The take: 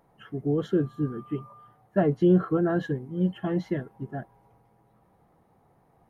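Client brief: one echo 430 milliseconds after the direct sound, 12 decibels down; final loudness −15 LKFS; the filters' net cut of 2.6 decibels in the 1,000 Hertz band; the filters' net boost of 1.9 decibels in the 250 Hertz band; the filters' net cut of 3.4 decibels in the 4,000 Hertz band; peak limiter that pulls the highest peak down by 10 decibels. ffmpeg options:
ffmpeg -i in.wav -af "equalizer=frequency=250:width_type=o:gain=3.5,equalizer=frequency=1000:width_type=o:gain=-4.5,equalizer=frequency=4000:width_type=o:gain=-4.5,alimiter=limit=-19.5dB:level=0:latency=1,aecho=1:1:430:0.251,volume=15dB" out.wav

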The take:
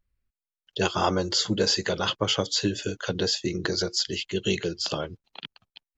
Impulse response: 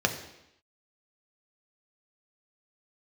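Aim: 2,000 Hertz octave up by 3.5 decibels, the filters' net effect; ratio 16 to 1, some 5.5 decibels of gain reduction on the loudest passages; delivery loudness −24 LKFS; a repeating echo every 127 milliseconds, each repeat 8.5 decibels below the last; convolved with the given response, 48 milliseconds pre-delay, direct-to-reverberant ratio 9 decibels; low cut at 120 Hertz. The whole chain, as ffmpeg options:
-filter_complex "[0:a]highpass=120,equalizer=frequency=2000:width_type=o:gain=5,acompressor=threshold=-24dB:ratio=16,aecho=1:1:127|254|381|508:0.376|0.143|0.0543|0.0206,asplit=2[link_01][link_02];[1:a]atrim=start_sample=2205,adelay=48[link_03];[link_02][link_03]afir=irnorm=-1:irlink=0,volume=-20.5dB[link_04];[link_01][link_04]amix=inputs=2:normalize=0,volume=4dB"

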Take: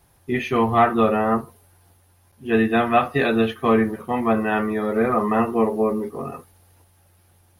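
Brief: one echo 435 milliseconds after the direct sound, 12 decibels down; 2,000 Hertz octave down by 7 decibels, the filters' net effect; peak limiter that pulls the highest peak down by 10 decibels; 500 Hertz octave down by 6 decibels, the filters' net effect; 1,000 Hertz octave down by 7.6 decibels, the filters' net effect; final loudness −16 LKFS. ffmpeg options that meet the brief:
ffmpeg -i in.wav -af "equalizer=frequency=500:width_type=o:gain=-5.5,equalizer=frequency=1000:width_type=o:gain=-7,equalizer=frequency=2000:width_type=o:gain=-6.5,alimiter=limit=-20dB:level=0:latency=1,aecho=1:1:435:0.251,volume=13dB" out.wav

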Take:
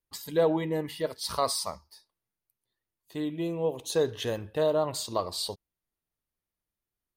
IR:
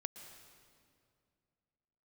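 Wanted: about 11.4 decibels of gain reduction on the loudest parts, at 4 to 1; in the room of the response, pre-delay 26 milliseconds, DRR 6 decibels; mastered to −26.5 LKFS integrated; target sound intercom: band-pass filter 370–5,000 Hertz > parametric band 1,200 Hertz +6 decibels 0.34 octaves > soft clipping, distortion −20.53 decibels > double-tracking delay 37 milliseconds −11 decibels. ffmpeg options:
-filter_complex "[0:a]acompressor=threshold=-33dB:ratio=4,asplit=2[link_01][link_02];[1:a]atrim=start_sample=2205,adelay=26[link_03];[link_02][link_03]afir=irnorm=-1:irlink=0,volume=-3.5dB[link_04];[link_01][link_04]amix=inputs=2:normalize=0,highpass=370,lowpass=5000,equalizer=frequency=1200:width_type=o:width=0.34:gain=6,asoftclip=threshold=-25dB,asplit=2[link_05][link_06];[link_06]adelay=37,volume=-11dB[link_07];[link_05][link_07]amix=inputs=2:normalize=0,volume=11.5dB"

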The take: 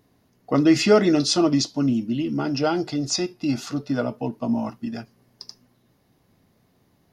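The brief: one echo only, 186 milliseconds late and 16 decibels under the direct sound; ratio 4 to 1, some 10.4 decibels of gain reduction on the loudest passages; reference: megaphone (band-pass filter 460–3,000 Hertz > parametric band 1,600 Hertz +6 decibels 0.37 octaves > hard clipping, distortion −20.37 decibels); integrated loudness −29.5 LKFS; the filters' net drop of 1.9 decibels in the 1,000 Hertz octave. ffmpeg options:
ffmpeg -i in.wav -af "equalizer=frequency=1000:width_type=o:gain=-3.5,acompressor=threshold=-24dB:ratio=4,highpass=460,lowpass=3000,equalizer=frequency=1600:width_type=o:width=0.37:gain=6,aecho=1:1:186:0.158,asoftclip=type=hard:threshold=-24dB,volume=5.5dB" out.wav

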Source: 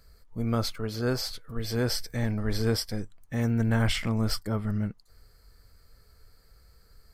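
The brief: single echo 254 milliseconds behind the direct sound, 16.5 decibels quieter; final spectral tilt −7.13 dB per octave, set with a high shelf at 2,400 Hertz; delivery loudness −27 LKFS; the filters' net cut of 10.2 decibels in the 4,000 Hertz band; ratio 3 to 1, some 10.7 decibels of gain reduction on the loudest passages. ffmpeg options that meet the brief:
ffmpeg -i in.wav -af "highshelf=frequency=2400:gain=-7.5,equalizer=frequency=4000:width_type=o:gain=-6,acompressor=threshold=-36dB:ratio=3,aecho=1:1:254:0.15,volume=12.5dB" out.wav

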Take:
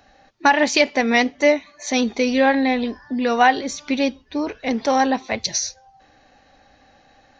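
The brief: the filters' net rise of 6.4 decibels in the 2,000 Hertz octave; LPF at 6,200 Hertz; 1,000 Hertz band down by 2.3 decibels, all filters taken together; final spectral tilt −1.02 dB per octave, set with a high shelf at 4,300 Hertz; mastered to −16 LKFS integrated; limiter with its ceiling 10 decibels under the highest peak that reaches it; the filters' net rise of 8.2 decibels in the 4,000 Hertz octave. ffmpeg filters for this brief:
ffmpeg -i in.wav -af "lowpass=6200,equalizer=frequency=1000:width_type=o:gain=-5,equalizer=frequency=2000:width_type=o:gain=6,equalizer=frequency=4000:width_type=o:gain=4.5,highshelf=frequency=4300:gain=9,volume=2.5dB,alimiter=limit=-3.5dB:level=0:latency=1" out.wav

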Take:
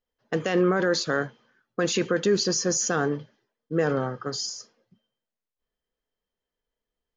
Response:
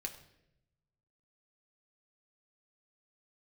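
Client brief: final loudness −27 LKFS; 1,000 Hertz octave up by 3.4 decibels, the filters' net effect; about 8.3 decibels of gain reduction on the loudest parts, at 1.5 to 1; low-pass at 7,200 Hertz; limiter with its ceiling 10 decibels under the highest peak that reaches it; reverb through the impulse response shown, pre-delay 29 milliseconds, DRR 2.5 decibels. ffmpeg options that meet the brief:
-filter_complex "[0:a]lowpass=7200,equalizer=frequency=1000:width_type=o:gain=5,acompressor=threshold=-41dB:ratio=1.5,alimiter=level_in=2.5dB:limit=-24dB:level=0:latency=1,volume=-2.5dB,asplit=2[link_01][link_02];[1:a]atrim=start_sample=2205,adelay=29[link_03];[link_02][link_03]afir=irnorm=-1:irlink=0,volume=-1dB[link_04];[link_01][link_04]amix=inputs=2:normalize=0,volume=7.5dB"

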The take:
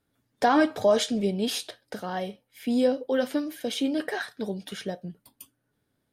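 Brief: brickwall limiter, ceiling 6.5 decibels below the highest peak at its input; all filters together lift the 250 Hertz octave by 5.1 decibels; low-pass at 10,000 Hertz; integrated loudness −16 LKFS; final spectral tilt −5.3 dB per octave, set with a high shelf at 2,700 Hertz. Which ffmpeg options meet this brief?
ffmpeg -i in.wav -af "lowpass=10000,equalizer=frequency=250:width_type=o:gain=6,highshelf=frequency=2700:gain=-7.5,volume=10.5dB,alimiter=limit=-4dB:level=0:latency=1" out.wav

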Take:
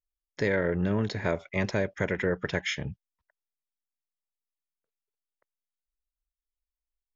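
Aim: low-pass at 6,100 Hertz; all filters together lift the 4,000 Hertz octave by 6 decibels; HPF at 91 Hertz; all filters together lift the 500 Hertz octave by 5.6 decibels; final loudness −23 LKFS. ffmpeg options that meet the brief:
ffmpeg -i in.wav -af "highpass=91,lowpass=6100,equalizer=frequency=500:width_type=o:gain=6.5,equalizer=frequency=4000:width_type=o:gain=8.5,volume=3dB" out.wav

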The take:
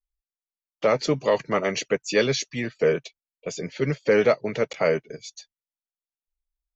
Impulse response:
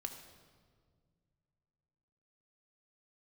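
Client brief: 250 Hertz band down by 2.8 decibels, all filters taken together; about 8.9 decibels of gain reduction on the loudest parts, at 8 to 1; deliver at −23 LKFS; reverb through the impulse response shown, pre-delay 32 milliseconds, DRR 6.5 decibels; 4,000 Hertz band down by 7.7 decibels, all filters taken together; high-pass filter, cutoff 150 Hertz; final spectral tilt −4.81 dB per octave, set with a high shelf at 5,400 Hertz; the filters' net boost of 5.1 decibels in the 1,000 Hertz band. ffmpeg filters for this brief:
-filter_complex "[0:a]highpass=150,equalizer=frequency=250:width_type=o:gain=-3.5,equalizer=frequency=1000:width_type=o:gain=7.5,equalizer=frequency=4000:width_type=o:gain=-7.5,highshelf=frequency=5400:gain=-6.5,acompressor=threshold=-23dB:ratio=8,asplit=2[link_01][link_02];[1:a]atrim=start_sample=2205,adelay=32[link_03];[link_02][link_03]afir=irnorm=-1:irlink=0,volume=-4.5dB[link_04];[link_01][link_04]amix=inputs=2:normalize=0,volume=6.5dB"

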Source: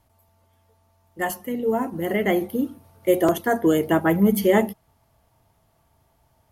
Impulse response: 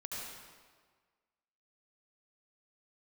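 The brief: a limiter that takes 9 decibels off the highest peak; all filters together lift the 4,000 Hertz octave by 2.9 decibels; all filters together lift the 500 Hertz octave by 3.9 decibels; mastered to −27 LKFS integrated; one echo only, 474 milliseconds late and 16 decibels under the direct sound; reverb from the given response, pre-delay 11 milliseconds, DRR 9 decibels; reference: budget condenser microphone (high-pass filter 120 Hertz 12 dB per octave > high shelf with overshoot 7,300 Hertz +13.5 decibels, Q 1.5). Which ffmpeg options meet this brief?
-filter_complex "[0:a]equalizer=frequency=500:width_type=o:gain=5,equalizer=frequency=4000:width_type=o:gain=7,alimiter=limit=-12.5dB:level=0:latency=1,aecho=1:1:474:0.158,asplit=2[link_01][link_02];[1:a]atrim=start_sample=2205,adelay=11[link_03];[link_02][link_03]afir=irnorm=-1:irlink=0,volume=-9.5dB[link_04];[link_01][link_04]amix=inputs=2:normalize=0,highpass=120,highshelf=frequency=7300:width_type=q:width=1.5:gain=13.5,volume=-6.5dB"

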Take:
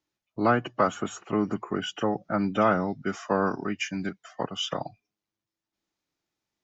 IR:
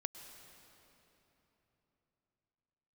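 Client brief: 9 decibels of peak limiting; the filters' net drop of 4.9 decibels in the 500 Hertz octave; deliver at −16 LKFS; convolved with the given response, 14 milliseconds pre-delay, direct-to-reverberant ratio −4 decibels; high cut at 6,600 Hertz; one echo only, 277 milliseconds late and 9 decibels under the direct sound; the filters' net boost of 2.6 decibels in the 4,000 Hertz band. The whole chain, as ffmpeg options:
-filter_complex "[0:a]lowpass=6600,equalizer=frequency=500:width_type=o:gain=-6.5,equalizer=frequency=4000:width_type=o:gain=4.5,alimiter=limit=-19dB:level=0:latency=1,aecho=1:1:277:0.355,asplit=2[link_01][link_02];[1:a]atrim=start_sample=2205,adelay=14[link_03];[link_02][link_03]afir=irnorm=-1:irlink=0,volume=6dB[link_04];[link_01][link_04]amix=inputs=2:normalize=0,volume=10dB"

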